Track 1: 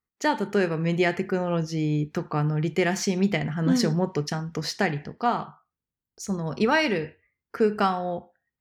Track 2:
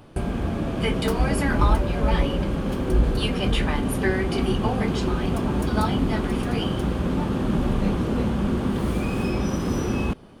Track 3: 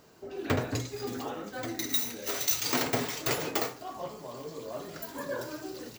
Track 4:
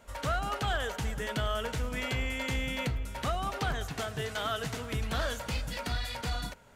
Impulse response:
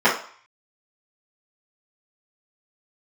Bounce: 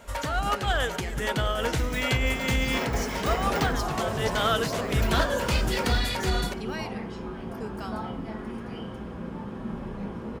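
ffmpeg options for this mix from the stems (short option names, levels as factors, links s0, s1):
-filter_complex "[0:a]highpass=190,aemphasis=mode=production:type=75fm,volume=0.15,asplit=2[s0][s1];[1:a]adelay=2150,volume=0.126,asplit=2[s2][s3];[s3]volume=0.168[s4];[2:a]acompressor=threshold=0.01:ratio=4,volume=0.944,afade=t=in:st=1.12:d=0.33:silence=0.398107,afade=t=in:st=2.49:d=0.29:silence=0.446684,asplit=2[s5][s6];[s6]volume=0.316[s7];[3:a]acontrast=76,volume=1.19[s8];[s1]apad=whole_len=297979[s9];[s8][s9]sidechaincompress=threshold=0.00794:ratio=8:attack=5.7:release=122[s10];[4:a]atrim=start_sample=2205[s11];[s4][s7]amix=inputs=2:normalize=0[s12];[s12][s11]afir=irnorm=-1:irlink=0[s13];[s0][s2][s5][s10][s13]amix=inputs=5:normalize=0"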